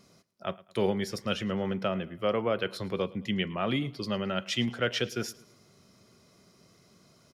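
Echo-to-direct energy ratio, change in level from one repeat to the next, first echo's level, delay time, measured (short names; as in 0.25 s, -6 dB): -20.5 dB, -6.5 dB, -21.5 dB, 0.109 s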